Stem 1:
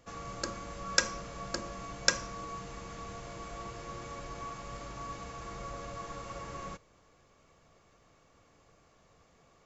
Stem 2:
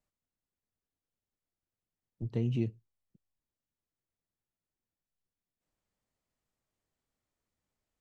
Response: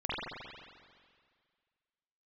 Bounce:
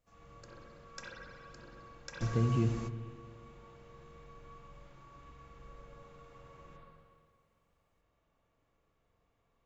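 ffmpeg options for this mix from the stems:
-filter_complex "[0:a]volume=-2.5dB,asplit=2[a][b];[b]volume=-19.5dB[c];[1:a]volume=-2dB,asplit=3[d][e][f];[e]volume=-12.5dB[g];[f]apad=whole_len=425861[h];[a][h]sidechaingate=range=-33dB:threshold=-58dB:ratio=16:detection=peak[i];[2:a]atrim=start_sample=2205[j];[c][g]amix=inputs=2:normalize=0[k];[k][j]afir=irnorm=-1:irlink=0[l];[i][d][l]amix=inputs=3:normalize=0,lowshelf=f=100:g=6"

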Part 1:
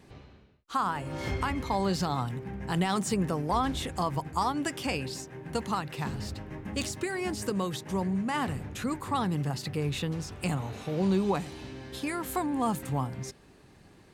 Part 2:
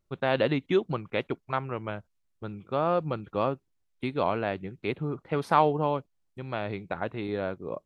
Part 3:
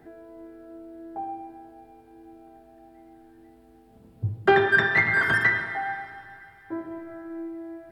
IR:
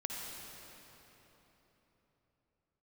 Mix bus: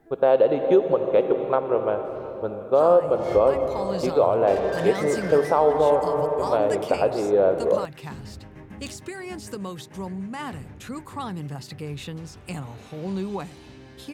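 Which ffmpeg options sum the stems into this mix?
-filter_complex "[0:a]adelay=2050,volume=-3dB[a];[1:a]equalizer=f=125:t=o:w=1:g=-11,equalizer=f=250:t=o:w=1:g=-5,equalizer=f=500:t=o:w=1:g=11,equalizer=f=2k:t=o:w=1:g=-11,equalizer=f=4k:t=o:w=1:g=-9,volume=3dB,asplit=2[b][c];[c]volume=-3dB[d];[2:a]asoftclip=type=tanh:threshold=-27.5dB,volume=-7dB[e];[3:a]atrim=start_sample=2205[f];[d][f]afir=irnorm=-1:irlink=0[g];[a][b][e][g]amix=inputs=4:normalize=0,alimiter=limit=-8.5dB:level=0:latency=1:release=295"

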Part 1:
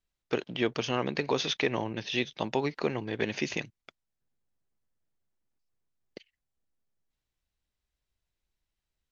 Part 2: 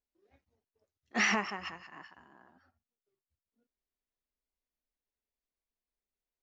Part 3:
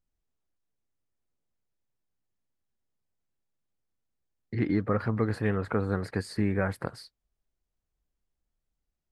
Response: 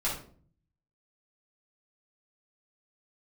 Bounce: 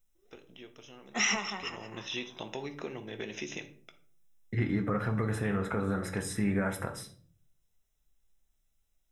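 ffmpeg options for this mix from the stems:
-filter_complex "[0:a]acompressor=threshold=-34dB:ratio=2.5,equalizer=f=350:t=o:w=1.1:g=5,volume=-8.5dB,afade=t=in:st=1.55:d=0.46:silence=0.237137,asplit=2[a][b];[b]volume=-11.5dB[c];[1:a]bandreject=f=1.7k:w=6.2,acrossover=split=120|3000[d][e][f];[e]acompressor=threshold=-31dB:ratio=6[g];[d][g][f]amix=inputs=3:normalize=0,volume=-1.5dB,asplit=2[h][i];[i]volume=-15dB[j];[2:a]alimiter=limit=-20dB:level=0:latency=1:release=116,volume=-3dB,asplit=2[k][l];[l]volume=-8dB[m];[3:a]atrim=start_sample=2205[n];[c][j][m]amix=inputs=3:normalize=0[o];[o][n]afir=irnorm=-1:irlink=0[p];[a][h][k][p]amix=inputs=4:normalize=0,asuperstop=centerf=4500:order=12:qfactor=5.1,highshelf=f=3.1k:g=10.5"

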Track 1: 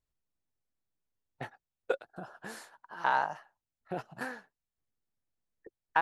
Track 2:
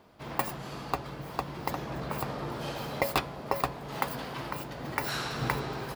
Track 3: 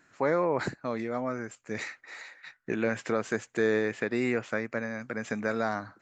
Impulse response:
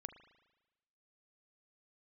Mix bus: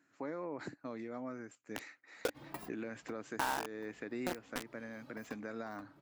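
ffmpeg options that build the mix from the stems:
-filter_complex "[0:a]acrusher=bits=4:mix=0:aa=0.000001,adelay=350,volume=2.5dB[a];[1:a]asplit=2[b][c];[c]adelay=2.6,afreqshift=2.3[d];[b][d]amix=inputs=2:normalize=1,adelay=2150,volume=-10dB[e];[2:a]highpass=96,alimiter=limit=-19.5dB:level=0:latency=1:release=98,volume=-12dB,asplit=2[f][g];[g]apad=whole_len=357342[h];[e][h]sidechaincompress=threshold=-56dB:ratio=8:attack=16:release=499[i];[a][f]amix=inputs=2:normalize=0,acompressor=threshold=-40dB:ratio=2,volume=0dB[j];[i][j]amix=inputs=2:normalize=0,equalizer=f=290:t=o:w=0.36:g=10"

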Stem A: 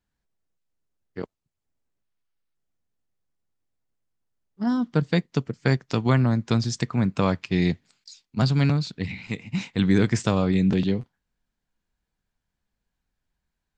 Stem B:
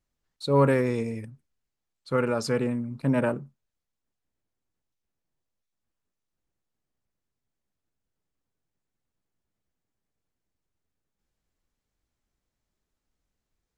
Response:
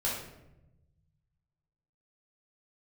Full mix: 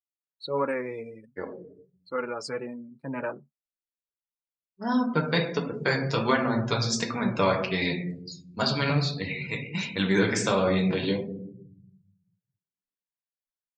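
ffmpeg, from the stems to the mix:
-filter_complex "[0:a]acontrast=43,adelay=200,volume=-2dB,asplit=2[a][b];[b]volume=-4dB[c];[1:a]volume=1.5dB[d];[2:a]atrim=start_sample=2205[e];[c][e]afir=irnorm=-1:irlink=0[f];[a][d][f]amix=inputs=3:normalize=0,afftdn=nr=26:nf=-37,highpass=f=620:p=1,flanger=delay=3.4:depth=4:regen=-32:speed=1.4:shape=triangular"

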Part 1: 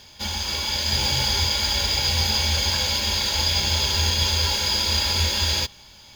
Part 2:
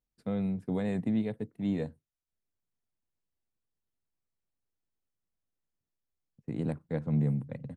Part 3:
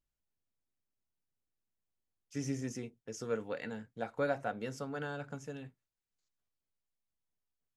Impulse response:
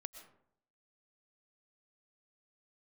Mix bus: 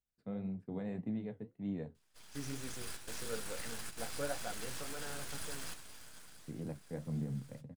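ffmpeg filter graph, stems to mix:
-filter_complex "[0:a]acrossover=split=440|3000[a][b][c];[a]acompressor=threshold=-32dB:ratio=6[d];[d][b][c]amix=inputs=3:normalize=0,aeval=exprs='abs(val(0))':c=same,adelay=1950,volume=-14.5dB,afade=t=out:st=5.88:d=0.79:silence=0.334965[e];[1:a]lowpass=f=2.4k:p=1,volume=-5dB[f];[2:a]adynamicequalizer=threshold=0.00316:dfrequency=240:dqfactor=1.5:tfrequency=240:tqfactor=1.5:attack=5:release=100:ratio=0.375:range=3:mode=cutabove:tftype=bell,volume=-2.5dB,asplit=2[g][h];[h]apad=whole_len=357284[i];[e][i]sidechaingate=range=-9dB:threshold=-57dB:ratio=16:detection=peak[j];[j][f][g]amix=inputs=3:normalize=0,flanger=delay=9.2:depth=7.1:regen=-56:speed=1.8:shape=triangular"

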